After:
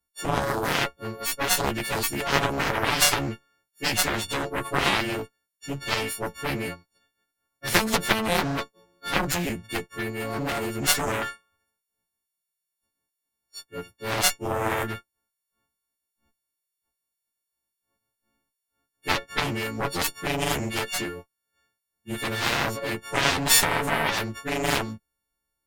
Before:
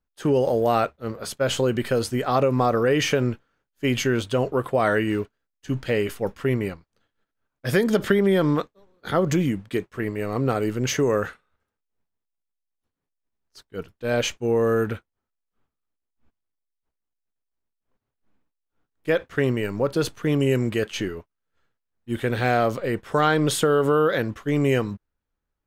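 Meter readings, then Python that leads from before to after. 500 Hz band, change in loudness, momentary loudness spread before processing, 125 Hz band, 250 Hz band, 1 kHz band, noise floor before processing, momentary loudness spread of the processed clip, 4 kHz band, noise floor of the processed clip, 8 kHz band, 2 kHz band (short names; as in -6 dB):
-8.5 dB, -2.0 dB, 12 LU, -6.5 dB, -7.0 dB, 0.0 dB, -82 dBFS, 13 LU, +6.0 dB, -84 dBFS, +8.0 dB, +3.0 dB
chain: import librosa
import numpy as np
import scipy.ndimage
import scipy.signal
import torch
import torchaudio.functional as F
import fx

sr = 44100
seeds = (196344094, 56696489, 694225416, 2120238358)

y = fx.freq_snap(x, sr, grid_st=4)
y = fx.cheby_harmonics(y, sr, harmonics=(4, 7), levels_db=(-10, -11), full_scale_db=-3.0)
y = fx.doppler_dist(y, sr, depth_ms=0.15)
y = F.gain(torch.from_numpy(y), -2.5).numpy()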